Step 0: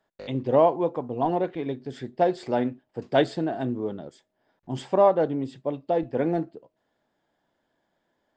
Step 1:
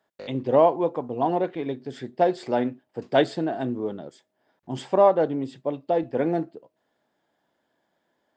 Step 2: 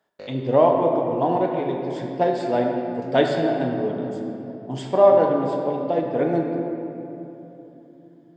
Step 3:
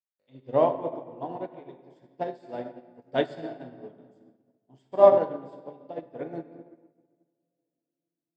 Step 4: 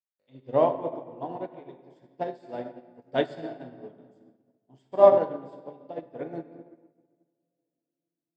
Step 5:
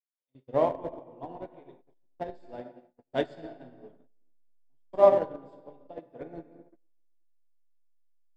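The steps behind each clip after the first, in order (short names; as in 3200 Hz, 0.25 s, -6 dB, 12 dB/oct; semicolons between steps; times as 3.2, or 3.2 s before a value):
HPF 140 Hz 6 dB/oct; gain +1.5 dB
reverb RT60 3.2 s, pre-delay 7 ms, DRR 1 dB
upward expander 2.5:1, over -37 dBFS
nothing audible
gate -49 dBFS, range -24 dB; in parallel at -5 dB: backlash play -21.5 dBFS; on the sum: gain -6.5 dB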